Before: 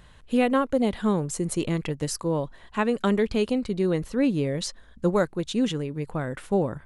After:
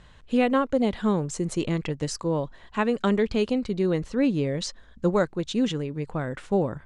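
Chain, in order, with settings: LPF 7900 Hz 24 dB/oct

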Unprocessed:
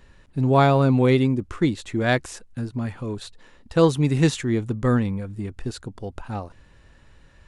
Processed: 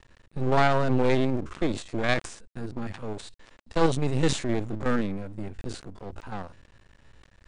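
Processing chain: stepped spectrum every 50 ms; half-wave rectifier; steep low-pass 9700 Hz 96 dB/oct; sustainer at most 130 dB/s

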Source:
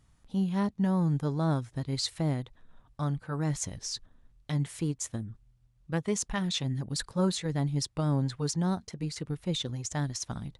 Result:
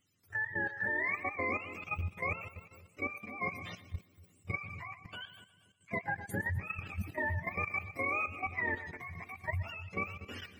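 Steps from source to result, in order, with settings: spectrum mirrored in octaves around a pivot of 580 Hz; split-band echo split 460 Hz, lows 0.26 s, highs 0.12 s, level -12 dB; level quantiser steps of 11 dB

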